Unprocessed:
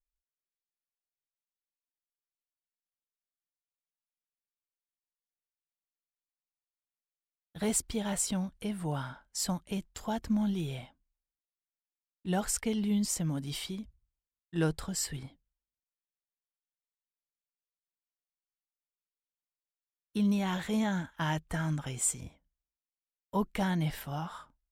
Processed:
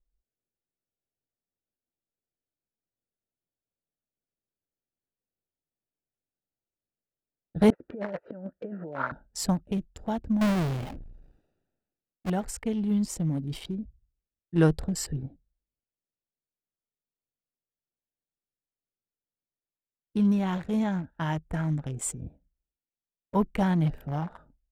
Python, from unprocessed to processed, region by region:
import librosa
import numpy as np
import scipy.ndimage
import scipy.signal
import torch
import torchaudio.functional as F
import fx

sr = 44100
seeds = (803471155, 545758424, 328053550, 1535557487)

y = fx.chain(x, sr, fx.over_compress(threshold_db=-36.0, ratio=-0.5),
    fx.cabinet(low_hz=410.0, low_slope=12, high_hz=2100.0, hz=(550.0, 790.0, 1300.0, 1900.0), db=(6, -7, 4, 5)), at=(7.7, 9.12))
y = fx.chain(y, sr, fx.halfwave_hold(),
    fx.peak_eq(hz=3400.0, db=2.5, octaves=1.8),
    fx.sustainer(db_per_s=40.0), at=(10.41, 12.3))
y = fx.wiener(y, sr, points=41)
y = fx.high_shelf(y, sr, hz=2400.0, db=-9.0)
y = fx.rider(y, sr, range_db=10, speed_s=2.0)
y = y * librosa.db_to_amplitude(3.0)